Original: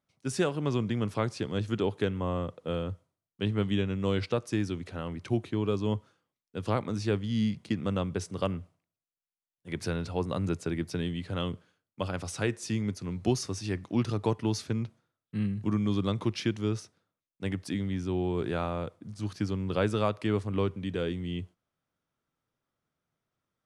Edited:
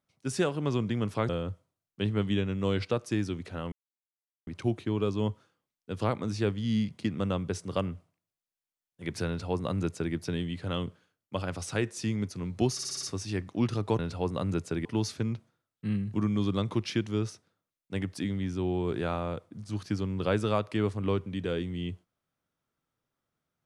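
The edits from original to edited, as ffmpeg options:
ffmpeg -i in.wav -filter_complex "[0:a]asplit=10[link_01][link_02][link_03][link_04][link_05][link_06][link_07][link_08][link_09][link_10];[link_01]atrim=end=1.292[link_11];[link_02]atrim=start=2.698:end=5.13,asetpts=PTS-STARTPTS,afade=type=out:start_time=2.428:duration=0.004:curve=hsin,apad=pad_dur=0.75[link_12];[link_03]atrim=start=5.13:end=13.452,asetpts=PTS-STARTPTS,afade=type=in:duration=0.004:curve=hsin[link_13];[link_04]atrim=start=13.388:end=13.452[link_14];[link_05]atrim=start=13.388:end=13.452[link_15];[link_06]atrim=start=13.388:end=13.452[link_16];[link_07]atrim=start=13.388:end=13.452[link_17];[link_08]atrim=start=13.388:end=14.352[link_18];[link_09]atrim=start=9.938:end=10.802[link_19];[link_10]atrim=start=14.348[link_20];[link_12][link_13]concat=n=2:v=0:a=1[link_21];[link_11][link_21]acrossfade=duration=0.004:curve1=hsin:curve2=hsin[link_22];[link_22][link_14]acrossfade=duration=0.004:curve1=hsin:curve2=hsin[link_23];[link_23][link_15]acrossfade=duration=0.004:curve1=hsin:curve2=hsin[link_24];[link_24][link_16]acrossfade=duration=0.004:curve1=hsin:curve2=hsin[link_25];[link_25][link_17]acrossfade=duration=0.004:curve1=hsin:curve2=hsin[link_26];[link_26][link_18]acrossfade=duration=0.004:curve1=hsin:curve2=hsin[link_27];[link_27][link_19]acrossfade=duration=0.004:curve1=hsin:curve2=hsin[link_28];[link_28][link_20]acrossfade=duration=0.004:curve1=hsin:curve2=hsin" out.wav

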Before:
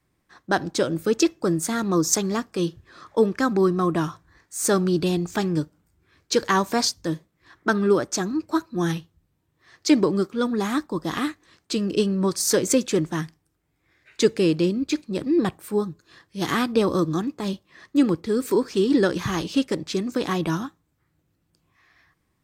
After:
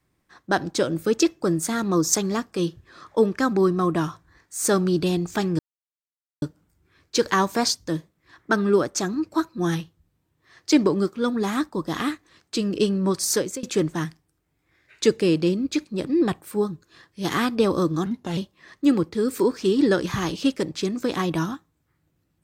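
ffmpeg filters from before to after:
ffmpeg -i in.wav -filter_complex "[0:a]asplit=5[link_01][link_02][link_03][link_04][link_05];[link_01]atrim=end=5.59,asetpts=PTS-STARTPTS,afade=type=out:start_time=5.586:duration=0.004:curve=hsin,apad=pad_dur=0.83[link_06];[link_02]atrim=start=5.59:end=12.8,asetpts=PTS-STARTPTS,afade=type=in:duration=0.004:curve=hsin,afade=type=out:start_time=6.86:duration=0.35:silence=0.0707946[link_07];[link_03]atrim=start=12.8:end=17.234,asetpts=PTS-STARTPTS,afade=type=in:duration=0.004:curve=hsin:silence=0.0707946[link_08];[link_04]atrim=start=17.23:end=17.49,asetpts=PTS-STARTPTS,asetrate=36603,aresample=44100,atrim=end_sample=13814,asetpts=PTS-STARTPTS[link_09];[link_05]atrim=start=17.486[link_10];[link_06][link_07][link_08]concat=n=3:v=0:a=1[link_11];[link_11][link_09]acrossfade=duration=0.004:curve1=hsin:curve2=hsin[link_12];[link_12][link_10]acrossfade=duration=0.004:curve1=hsin:curve2=hsin" out.wav

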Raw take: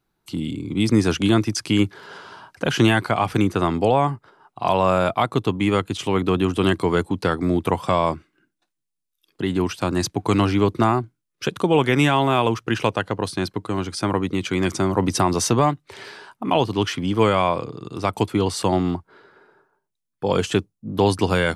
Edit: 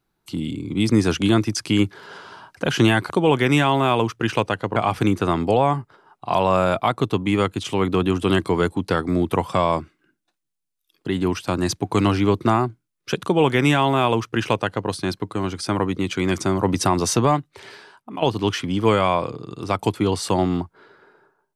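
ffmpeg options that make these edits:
ffmpeg -i in.wav -filter_complex "[0:a]asplit=4[link_01][link_02][link_03][link_04];[link_01]atrim=end=3.102[link_05];[link_02]atrim=start=11.568:end=13.232[link_06];[link_03]atrim=start=3.098:end=16.56,asetpts=PTS-STARTPTS,afade=type=out:start_time=12.602:duration=0.86:silence=0.266073[link_07];[link_04]atrim=start=16.56,asetpts=PTS-STARTPTS,afade=type=in:duration=0.004:curve=hsin:silence=0.266073[link_08];[link_05][link_06]acrossfade=duration=0.004:curve1=hsin:curve2=hsin[link_09];[link_07][link_08]concat=n=2:v=0:a=1[link_10];[link_09][link_10]acrossfade=duration=0.004:curve1=hsin:curve2=hsin" out.wav

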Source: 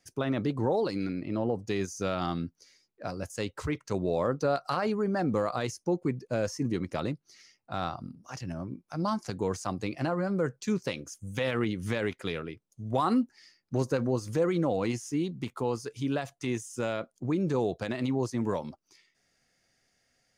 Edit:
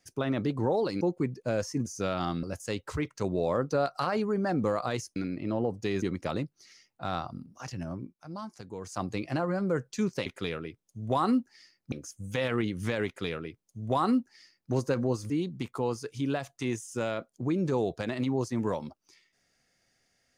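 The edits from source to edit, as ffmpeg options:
ffmpeg -i in.wav -filter_complex "[0:a]asplit=11[link_01][link_02][link_03][link_04][link_05][link_06][link_07][link_08][link_09][link_10][link_11];[link_01]atrim=end=1.012[link_12];[link_02]atrim=start=5.858:end=6.712[link_13];[link_03]atrim=start=1.868:end=2.442[link_14];[link_04]atrim=start=3.128:end=5.862[link_15];[link_05]atrim=start=1.008:end=1.872[link_16];[link_06]atrim=start=6.708:end=8.85,asetpts=PTS-STARTPTS,afade=type=out:start_time=1.922:duration=0.22:curve=qsin:silence=0.316228[link_17];[link_07]atrim=start=8.85:end=9.52,asetpts=PTS-STARTPTS,volume=-10dB[link_18];[link_08]atrim=start=9.52:end=10.952,asetpts=PTS-STARTPTS,afade=type=in:duration=0.22:curve=qsin:silence=0.316228[link_19];[link_09]atrim=start=12.088:end=13.752[link_20];[link_10]atrim=start=10.948:end=14.332[link_21];[link_11]atrim=start=15.118[link_22];[link_12][link_13]acrossfade=duration=0.004:curve1=hsin:curve2=hsin[link_23];[link_23][link_14]acrossfade=duration=0.004:curve1=hsin:curve2=hsin[link_24];[link_24][link_15]acrossfade=duration=0.004:curve1=hsin:curve2=hsin[link_25];[link_25][link_16]acrossfade=duration=0.004:curve1=hsin:curve2=hsin[link_26];[link_17][link_18][link_19]concat=n=3:v=0:a=1[link_27];[link_26][link_27]acrossfade=duration=0.004:curve1=hsin:curve2=hsin[link_28];[link_28][link_20]acrossfade=duration=0.004:curve1=hsin:curve2=hsin[link_29];[link_29][link_21]acrossfade=duration=0.004:curve1=hsin:curve2=hsin[link_30];[link_30][link_22]acrossfade=duration=0.004:curve1=hsin:curve2=hsin" out.wav

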